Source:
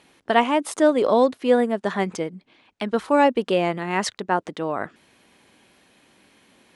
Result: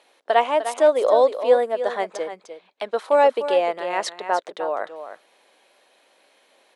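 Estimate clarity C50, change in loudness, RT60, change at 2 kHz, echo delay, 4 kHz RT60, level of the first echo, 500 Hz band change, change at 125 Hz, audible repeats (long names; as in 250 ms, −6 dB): no reverb audible, +1.0 dB, no reverb audible, −2.0 dB, 302 ms, no reverb audible, −10.5 dB, +2.5 dB, below −20 dB, 1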